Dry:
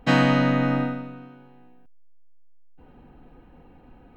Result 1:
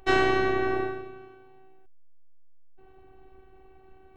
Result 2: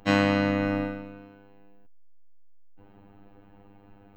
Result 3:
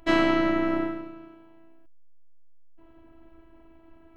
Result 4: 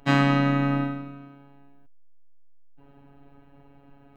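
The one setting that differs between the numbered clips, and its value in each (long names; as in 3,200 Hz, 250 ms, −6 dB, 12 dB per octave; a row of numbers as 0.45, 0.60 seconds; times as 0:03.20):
phases set to zero, frequency: 380, 100, 330, 140 Hertz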